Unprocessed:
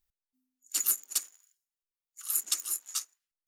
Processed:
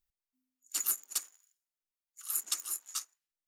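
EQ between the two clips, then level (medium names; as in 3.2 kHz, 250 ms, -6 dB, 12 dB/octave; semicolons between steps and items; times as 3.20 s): dynamic bell 1 kHz, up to +5 dB, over -56 dBFS, Q 0.85; -4.0 dB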